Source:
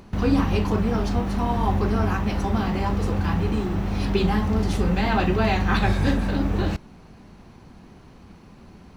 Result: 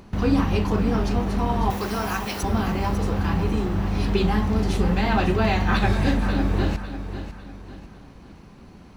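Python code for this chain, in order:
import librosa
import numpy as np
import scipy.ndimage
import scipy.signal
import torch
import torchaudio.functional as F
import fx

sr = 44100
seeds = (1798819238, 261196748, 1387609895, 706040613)

y = fx.riaa(x, sr, side='recording', at=(1.7, 2.43))
y = fx.echo_feedback(y, sr, ms=549, feedback_pct=38, wet_db=-11.0)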